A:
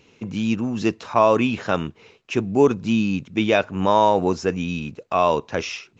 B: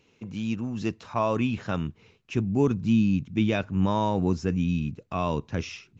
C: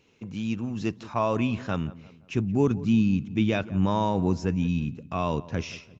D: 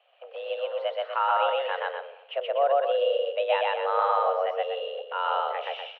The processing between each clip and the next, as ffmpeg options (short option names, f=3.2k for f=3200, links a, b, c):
-af "asubboost=boost=6:cutoff=230,volume=-8.5dB"
-filter_complex "[0:a]asplit=2[a][b];[b]adelay=174,lowpass=f=1.6k:p=1,volume=-17.5dB,asplit=2[c][d];[d]adelay=174,lowpass=f=1.6k:p=1,volume=0.45,asplit=2[e][f];[f]adelay=174,lowpass=f=1.6k:p=1,volume=0.45,asplit=2[g][h];[h]adelay=174,lowpass=f=1.6k:p=1,volume=0.45[i];[a][c][e][g][i]amix=inputs=5:normalize=0"
-af "highpass=f=250:t=q:w=0.5412,highpass=f=250:t=q:w=1.307,lowpass=f=3k:t=q:w=0.5176,lowpass=f=3k:t=q:w=0.7071,lowpass=f=3k:t=q:w=1.932,afreqshift=280,aecho=1:1:125.4|244.9:1|0.447"